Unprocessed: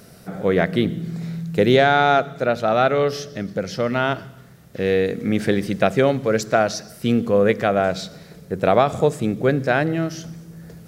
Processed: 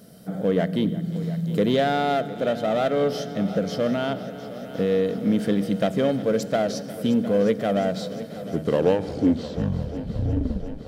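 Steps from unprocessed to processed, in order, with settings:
turntable brake at the end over 2.70 s
camcorder AGC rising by 6.6 dB per second
graphic EQ with 15 bands 250 Hz +4 dB, 630 Hz +9 dB, 2,500 Hz −5 dB, 6,300 Hz −4 dB
in parallel at −12 dB: wave folding −12 dBFS
on the sum: guitar amp tone stack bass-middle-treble 5-5-5
hollow resonant body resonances 200/290/440/3,100 Hz, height 13 dB, ringing for 35 ms
on a send: echo machine with several playback heads 354 ms, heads first and second, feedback 74%, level −18 dB

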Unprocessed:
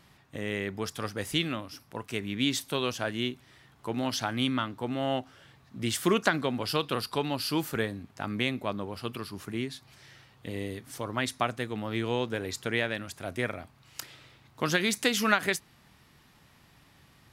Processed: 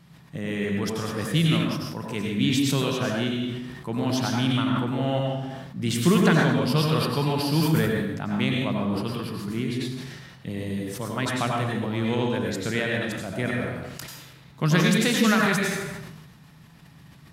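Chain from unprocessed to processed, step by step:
parametric band 160 Hz +14.5 dB 0.75 octaves
dense smooth reverb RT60 0.84 s, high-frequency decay 0.8×, pre-delay 80 ms, DRR −1 dB
level that may fall only so fast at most 37 dB per second
level −1 dB

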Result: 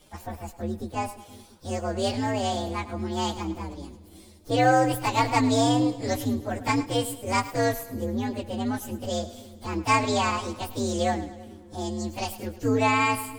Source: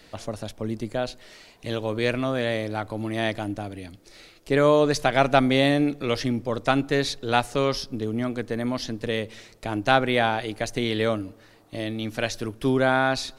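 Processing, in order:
partials spread apart or drawn together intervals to 128%
echo with a time of its own for lows and highs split 430 Hz, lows 344 ms, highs 106 ms, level −15 dB

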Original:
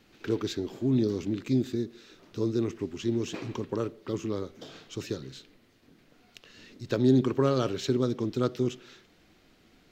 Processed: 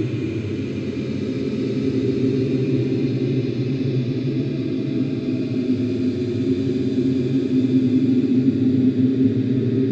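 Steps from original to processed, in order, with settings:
comb and all-pass reverb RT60 2.2 s, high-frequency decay 0.55×, pre-delay 10 ms, DRR −6.5 dB
treble cut that deepens with the level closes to 2,900 Hz, closed at −14 dBFS
extreme stretch with random phases 32×, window 0.10 s, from 0:01.47

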